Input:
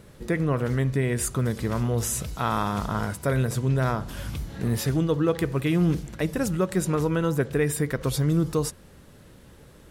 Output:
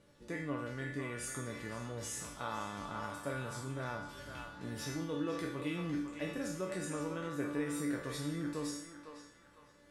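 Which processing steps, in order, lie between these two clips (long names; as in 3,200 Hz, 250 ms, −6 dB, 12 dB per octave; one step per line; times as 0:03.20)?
peak hold with a decay on every bin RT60 0.59 s
low-pass filter 8,800 Hz 12 dB per octave
low-shelf EQ 82 Hz −10.5 dB
tuned comb filter 290 Hz, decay 0.48 s, harmonics all, mix 90%
on a send: feedback echo with a band-pass in the loop 505 ms, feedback 44%, band-pass 1,400 Hz, level −5 dB
on the sum: level +1 dB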